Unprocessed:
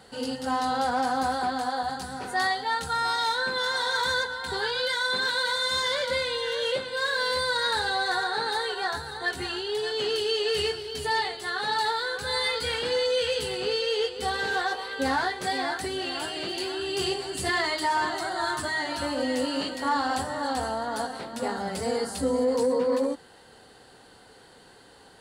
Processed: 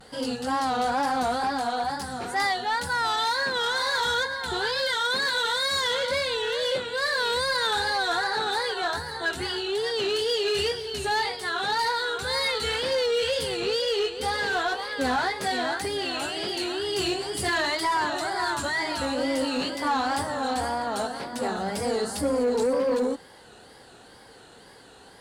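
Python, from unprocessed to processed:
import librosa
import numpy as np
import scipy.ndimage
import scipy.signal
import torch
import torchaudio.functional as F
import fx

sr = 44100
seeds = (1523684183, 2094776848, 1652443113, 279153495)

y = fx.quant_float(x, sr, bits=6)
y = fx.wow_flutter(y, sr, seeds[0], rate_hz=2.1, depth_cents=120.0)
y = fx.cheby_harmonics(y, sr, harmonics=(5,), levels_db=(-23,), full_scale_db=-16.0)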